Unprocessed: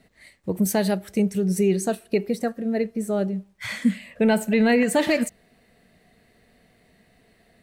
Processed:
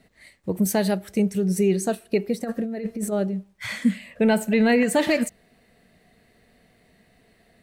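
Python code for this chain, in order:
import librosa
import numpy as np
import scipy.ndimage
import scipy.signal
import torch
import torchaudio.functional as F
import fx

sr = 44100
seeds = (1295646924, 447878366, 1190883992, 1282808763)

y = fx.over_compress(x, sr, threshold_db=-30.0, ratio=-1.0, at=(2.43, 3.11), fade=0.02)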